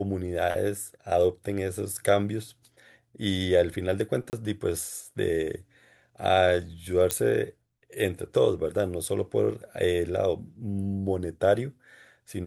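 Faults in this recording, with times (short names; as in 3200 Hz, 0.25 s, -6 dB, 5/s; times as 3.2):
4.3–4.33 gap 29 ms
7.11 pop -8 dBFS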